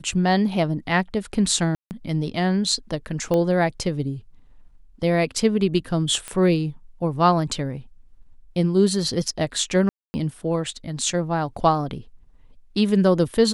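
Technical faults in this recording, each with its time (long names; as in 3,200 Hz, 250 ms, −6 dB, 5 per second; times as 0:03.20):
0:01.75–0:01.91: drop-out 159 ms
0:03.34: click −12 dBFS
0:06.28: click −16 dBFS
0:09.89–0:10.14: drop-out 250 ms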